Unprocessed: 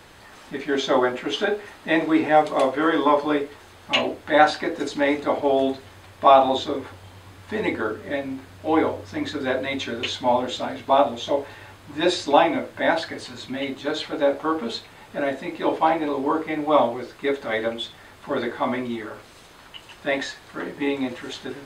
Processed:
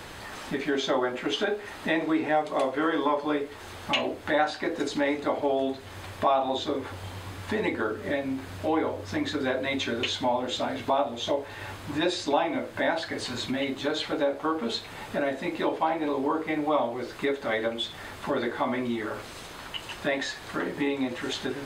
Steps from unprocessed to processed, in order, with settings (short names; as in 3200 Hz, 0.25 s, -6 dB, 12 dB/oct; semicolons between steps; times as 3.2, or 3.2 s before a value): compressor 2.5:1, threshold -35 dBFS, peak gain reduction 17 dB; gain +6 dB